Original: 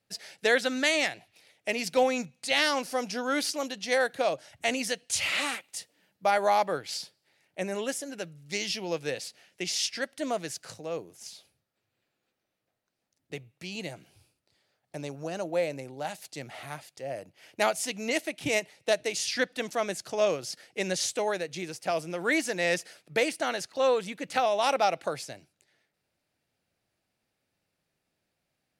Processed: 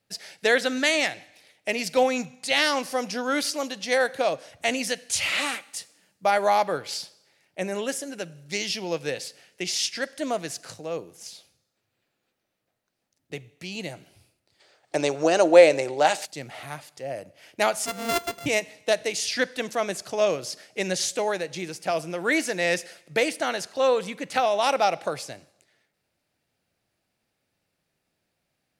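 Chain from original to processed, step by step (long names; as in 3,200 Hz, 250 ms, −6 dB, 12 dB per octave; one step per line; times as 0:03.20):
0:17.86–0:18.46: samples sorted by size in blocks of 64 samples
four-comb reverb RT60 0.88 s, combs from 32 ms, DRR 20 dB
0:14.60–0:16.25: gain on a spectral selection 290–9,300 Hz +12 dB
level +3 dB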